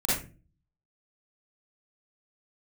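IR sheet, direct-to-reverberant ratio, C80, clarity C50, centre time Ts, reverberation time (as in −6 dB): −9.5 dB, 6.5 dB, −2.0 dB, 59 ms, 0.35 s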